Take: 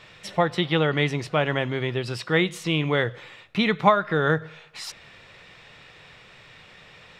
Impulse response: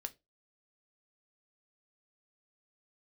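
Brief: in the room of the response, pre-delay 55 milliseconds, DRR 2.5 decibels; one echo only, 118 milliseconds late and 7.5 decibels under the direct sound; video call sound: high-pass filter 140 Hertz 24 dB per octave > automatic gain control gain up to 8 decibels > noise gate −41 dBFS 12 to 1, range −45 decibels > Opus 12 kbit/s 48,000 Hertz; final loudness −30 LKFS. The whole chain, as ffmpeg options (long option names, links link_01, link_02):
-filter_complex "[0:a]aecho=1:1:118:0.422,asplit=2[link_01][link_02];[1:a]atrim=start_sample=2205,adelay=55[link_03];[link_02][link_03]afir=irnorm=-1:irlink=0,volume=0dB[link_04];[link_01][link_04]amix=inputs=2:normalize=0,highpass=frequency=140:width=0.5412,highpass=frequency=140:width=1.3066,dynaudnorm=maxgain=8dB,agate=range=-45dB:threshold=-41dB:ratio=12,volume=-7.5dB" -ar 48000 -c:a libopus -b:a 12k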